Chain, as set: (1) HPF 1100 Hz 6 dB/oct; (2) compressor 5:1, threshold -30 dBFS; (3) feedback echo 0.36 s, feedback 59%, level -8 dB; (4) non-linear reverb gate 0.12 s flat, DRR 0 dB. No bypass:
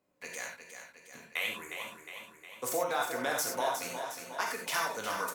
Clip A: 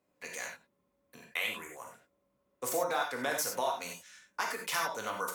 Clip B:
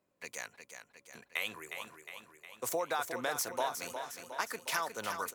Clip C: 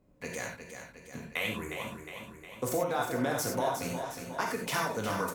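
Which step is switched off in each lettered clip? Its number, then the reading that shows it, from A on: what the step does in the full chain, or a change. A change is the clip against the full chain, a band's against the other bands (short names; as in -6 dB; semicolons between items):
3, echo-to-direct 1.5 dB to 0.0 dB; 4, echo-to-direct 1.5 dB to -6.0 dB; 1, 125 Hz band +15.0 dB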